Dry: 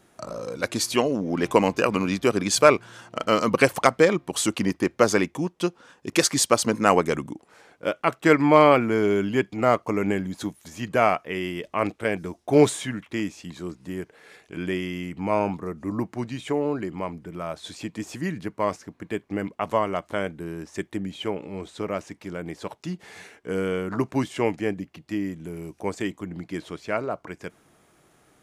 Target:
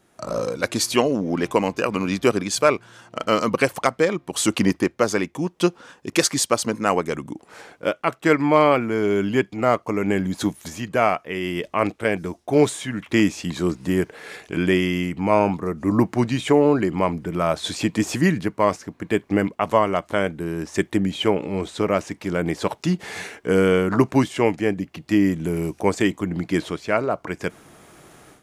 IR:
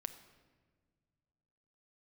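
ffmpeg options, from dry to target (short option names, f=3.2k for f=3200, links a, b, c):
-af "dynaudnorm=f=190:g=3:m=15dB,volume=-3dB"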